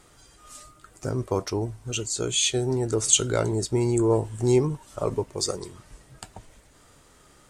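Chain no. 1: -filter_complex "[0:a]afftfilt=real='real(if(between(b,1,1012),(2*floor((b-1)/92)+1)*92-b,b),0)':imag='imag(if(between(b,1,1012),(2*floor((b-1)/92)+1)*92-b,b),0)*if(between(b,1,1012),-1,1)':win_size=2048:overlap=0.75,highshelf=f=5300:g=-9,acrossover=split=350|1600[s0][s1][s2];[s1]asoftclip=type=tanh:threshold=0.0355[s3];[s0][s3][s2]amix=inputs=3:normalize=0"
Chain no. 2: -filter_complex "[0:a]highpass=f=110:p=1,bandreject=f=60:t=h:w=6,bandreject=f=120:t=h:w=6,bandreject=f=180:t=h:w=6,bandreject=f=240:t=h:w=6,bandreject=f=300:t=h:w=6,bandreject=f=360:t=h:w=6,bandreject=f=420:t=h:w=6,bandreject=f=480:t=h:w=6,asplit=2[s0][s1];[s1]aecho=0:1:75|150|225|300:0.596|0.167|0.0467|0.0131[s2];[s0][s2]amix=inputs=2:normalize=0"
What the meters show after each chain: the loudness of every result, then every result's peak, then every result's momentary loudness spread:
-26.0 LUFS, -24.5 LUFS; -10.0 dBFS, -4.0 dBFS; 14 LU, 13 LU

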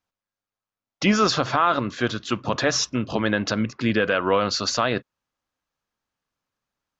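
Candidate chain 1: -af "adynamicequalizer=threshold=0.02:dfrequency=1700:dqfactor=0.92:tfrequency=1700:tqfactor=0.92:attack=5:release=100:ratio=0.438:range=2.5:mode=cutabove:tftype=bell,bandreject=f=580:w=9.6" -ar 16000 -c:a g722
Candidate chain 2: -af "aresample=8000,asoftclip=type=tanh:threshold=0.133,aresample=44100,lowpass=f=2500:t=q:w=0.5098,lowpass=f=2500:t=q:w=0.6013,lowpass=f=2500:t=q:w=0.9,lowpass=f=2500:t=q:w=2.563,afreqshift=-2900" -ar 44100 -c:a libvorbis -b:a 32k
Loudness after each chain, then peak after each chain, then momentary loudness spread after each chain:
-23.5 LUFS, -24.5 LUFS; -8.5 dBFS, -11.5 dBFS; 6 LU, 6 LU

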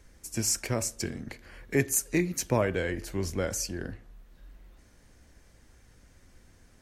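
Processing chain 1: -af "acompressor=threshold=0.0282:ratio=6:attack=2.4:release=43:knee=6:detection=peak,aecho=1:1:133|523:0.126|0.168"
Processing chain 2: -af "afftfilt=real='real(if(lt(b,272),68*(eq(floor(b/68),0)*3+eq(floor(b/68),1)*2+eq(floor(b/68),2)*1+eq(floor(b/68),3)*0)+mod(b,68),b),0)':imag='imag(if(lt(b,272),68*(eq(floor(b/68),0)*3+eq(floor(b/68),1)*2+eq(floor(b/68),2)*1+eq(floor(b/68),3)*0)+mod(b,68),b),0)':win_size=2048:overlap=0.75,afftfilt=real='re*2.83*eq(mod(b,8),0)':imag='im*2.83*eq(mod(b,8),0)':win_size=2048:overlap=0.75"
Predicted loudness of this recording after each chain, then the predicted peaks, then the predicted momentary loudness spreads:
-36.5 LUFS, -29.0 LUFS; -20.5 dBFS, -15.0 dBFS; 15 LU, 14 LU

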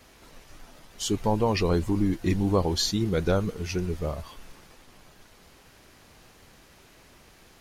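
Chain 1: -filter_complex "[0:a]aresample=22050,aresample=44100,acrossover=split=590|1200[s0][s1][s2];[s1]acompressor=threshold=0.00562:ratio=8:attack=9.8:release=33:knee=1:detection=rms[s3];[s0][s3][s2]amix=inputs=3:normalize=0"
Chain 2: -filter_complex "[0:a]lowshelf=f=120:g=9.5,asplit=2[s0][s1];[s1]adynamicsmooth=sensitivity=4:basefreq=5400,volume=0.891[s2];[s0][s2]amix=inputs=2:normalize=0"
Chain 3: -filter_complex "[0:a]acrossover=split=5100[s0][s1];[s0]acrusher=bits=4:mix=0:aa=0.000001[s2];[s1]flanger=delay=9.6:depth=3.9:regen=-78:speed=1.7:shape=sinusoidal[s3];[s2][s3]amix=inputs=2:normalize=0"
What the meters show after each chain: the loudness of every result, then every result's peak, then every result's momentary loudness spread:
-27.0 LUFS, -18.5 LUFS, -26.0 LUFS; -12.0 dBFS, -2.0 dBFS, -11.5 dBFS; 8 LU, 8 LU, 7 LU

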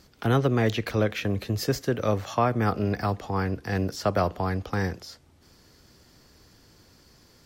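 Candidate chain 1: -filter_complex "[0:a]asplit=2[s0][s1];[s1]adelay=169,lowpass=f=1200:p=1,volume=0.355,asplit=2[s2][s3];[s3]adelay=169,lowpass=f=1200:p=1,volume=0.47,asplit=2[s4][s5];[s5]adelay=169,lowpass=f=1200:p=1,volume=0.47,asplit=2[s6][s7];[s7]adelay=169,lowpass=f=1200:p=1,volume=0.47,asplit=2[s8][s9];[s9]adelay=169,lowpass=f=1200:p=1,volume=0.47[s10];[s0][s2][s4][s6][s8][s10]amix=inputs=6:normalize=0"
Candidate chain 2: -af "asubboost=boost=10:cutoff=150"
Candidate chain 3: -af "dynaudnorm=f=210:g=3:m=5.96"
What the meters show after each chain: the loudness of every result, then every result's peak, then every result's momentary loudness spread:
-26.5 LUFS, -20.0 LUFS, -16.0 LUFS; -10.0 dBFS, -7.0 dBFS, -1.0 dBFS; 5 LU, 6 LU, 4 LU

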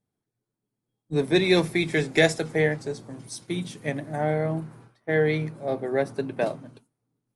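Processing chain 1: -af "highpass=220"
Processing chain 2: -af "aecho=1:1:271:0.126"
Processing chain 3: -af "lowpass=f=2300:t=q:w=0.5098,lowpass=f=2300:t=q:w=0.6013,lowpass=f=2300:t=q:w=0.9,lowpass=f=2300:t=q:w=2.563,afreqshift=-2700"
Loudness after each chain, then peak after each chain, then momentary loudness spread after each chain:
-26.5 LUFS, -25.5 LUFS, -23.0 LUFS; -6.5 dBFS, -5.5 dBFS, -6.0 dBFS; 15 LU, 16 LU, 13 LU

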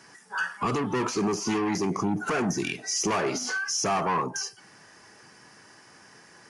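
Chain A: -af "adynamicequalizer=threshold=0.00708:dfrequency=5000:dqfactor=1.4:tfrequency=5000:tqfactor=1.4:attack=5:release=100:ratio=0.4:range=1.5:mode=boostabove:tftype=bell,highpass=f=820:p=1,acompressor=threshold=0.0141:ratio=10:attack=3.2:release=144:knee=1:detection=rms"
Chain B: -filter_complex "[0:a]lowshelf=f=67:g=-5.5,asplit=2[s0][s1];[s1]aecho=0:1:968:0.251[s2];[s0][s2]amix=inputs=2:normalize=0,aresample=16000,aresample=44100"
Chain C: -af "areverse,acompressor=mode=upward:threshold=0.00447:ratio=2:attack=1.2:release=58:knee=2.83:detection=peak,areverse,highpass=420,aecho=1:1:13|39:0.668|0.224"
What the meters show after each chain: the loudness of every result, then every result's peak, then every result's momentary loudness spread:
-41.0 LUFS, -28.0 LUFS, -27.5 LUFS; -27.0 dBFS, -16.0 dBFS, -14.0 dBFS; 13 LU, 12 LU, 7 LU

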